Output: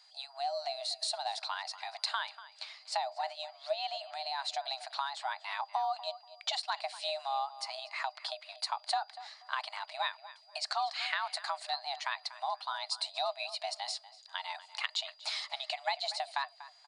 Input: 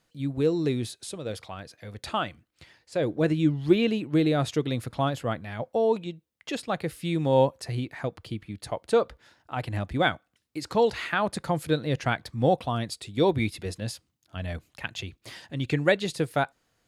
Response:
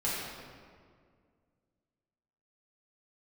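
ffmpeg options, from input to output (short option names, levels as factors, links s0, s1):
-filter_complex "[0:a]afreqshift=280,equalizer=f=4200:t=o:w=0.36:g=13,acompressor=threshold=0.0178:ratio=6,afftfilt=real='re*between(b*sr/4096,610,9800)':imag='im*between(b*sr/4096,610,9800)':win_size=4096:overlap=0.75,aeval=exprs='val(0)+0.000562*sin(2*PI*4800*n/s)':c=same,asplit=2[s0][s1];[s1]adelay=241,lowpass=f=3100:p=1,volume=0.178,asplit=2[s2][s3];[s3]adelay=241,lowpass=f=3100:p=1,volume=0.25,asplit=2[s4][s5];[s5]adelay=241,lowpass=f=3100:p=1,volume=0.25[s6];[s2][s4][s6]amix=inputs=3:normalize=0[s7];[s0][s7]amix=inputs=2:normalize=0,volume=1.58"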